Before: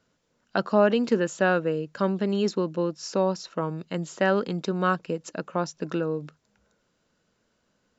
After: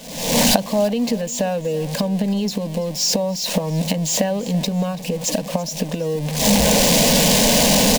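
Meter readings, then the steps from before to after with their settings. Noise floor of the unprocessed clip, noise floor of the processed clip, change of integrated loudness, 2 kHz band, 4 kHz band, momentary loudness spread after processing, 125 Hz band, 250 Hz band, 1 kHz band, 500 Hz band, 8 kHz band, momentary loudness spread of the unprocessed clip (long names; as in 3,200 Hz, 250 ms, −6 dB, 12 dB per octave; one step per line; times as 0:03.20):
−73 dBFS, −30 dBFS, +8.0 dB, +5.5 dB, +20.5 dB, 10 LU, +10.5 dB, +8.5 dB, +5.0 dB, +5.0 dB, can't be measured, 10 LU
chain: converter with a step at zero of −33 dBFS
camcorder AGC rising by 67 dB per second
phaser with its sweep stopped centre 360 Hz, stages 6
repeating echo 333 ms, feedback 36%, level −19 dB
level +1.5 dB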